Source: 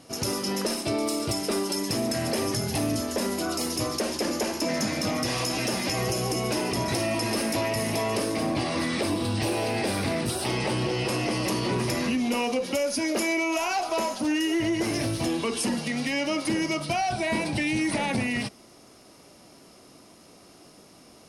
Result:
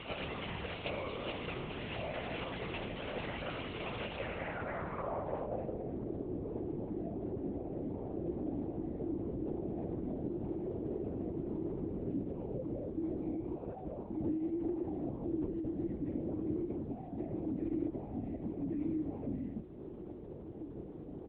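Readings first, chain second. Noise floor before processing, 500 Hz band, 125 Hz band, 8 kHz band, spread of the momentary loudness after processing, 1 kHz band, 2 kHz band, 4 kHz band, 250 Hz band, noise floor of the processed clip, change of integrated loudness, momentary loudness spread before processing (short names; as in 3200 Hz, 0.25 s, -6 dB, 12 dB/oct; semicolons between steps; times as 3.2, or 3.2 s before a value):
-52 dBFS, -11.0 dB, -10.0 dB, under -40 dB, 5 LU, -15.5 dB, -16.5 dB, under -15 dB, -9.5 dB, -47 dBFS, -12.5 dB, 2 LU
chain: echo 1.128 s -3.5 dB; compressor 12:1, threshold -41 dBFS, peak gain reduction 20.5 dB; bell 340 Hz -5 dB 0.43 oct; notches 60/120/180/240 Hz; low-pass sweep 2900 Hz -> 350 Hz, 4.14–5.98; added noise brown -64 dBFS; LPC vocoder at 8 kHz whisper; HPF 100 Hz 6 dB/oct; gain +6.5 dB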